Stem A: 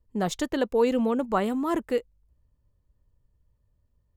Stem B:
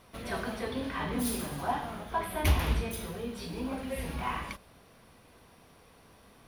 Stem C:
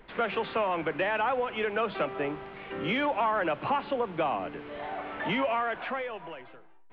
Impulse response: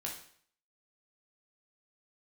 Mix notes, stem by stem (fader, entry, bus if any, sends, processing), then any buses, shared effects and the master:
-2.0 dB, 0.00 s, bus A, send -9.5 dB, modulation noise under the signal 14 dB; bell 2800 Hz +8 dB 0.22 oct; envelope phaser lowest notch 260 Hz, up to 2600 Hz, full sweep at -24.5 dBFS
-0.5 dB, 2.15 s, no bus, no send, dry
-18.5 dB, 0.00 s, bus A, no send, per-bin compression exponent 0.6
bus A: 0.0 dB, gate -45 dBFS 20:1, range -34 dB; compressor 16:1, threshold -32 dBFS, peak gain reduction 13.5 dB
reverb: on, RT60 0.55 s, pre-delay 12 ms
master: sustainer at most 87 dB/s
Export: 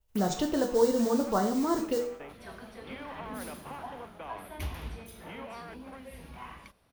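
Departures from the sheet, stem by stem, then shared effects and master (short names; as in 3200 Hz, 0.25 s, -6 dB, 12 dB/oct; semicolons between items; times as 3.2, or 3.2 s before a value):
stem A: send -9.5 dB -> -1.5 dB; stem B -0.5 dB -> -11.0 dB; master: missing sustainer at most 87 dB/s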